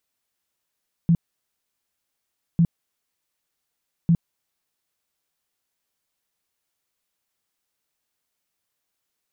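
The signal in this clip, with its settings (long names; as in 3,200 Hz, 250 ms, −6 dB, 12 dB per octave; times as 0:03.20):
tone bursts 168 Hz, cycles 10, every 1.50 s, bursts 3, −13 dBFS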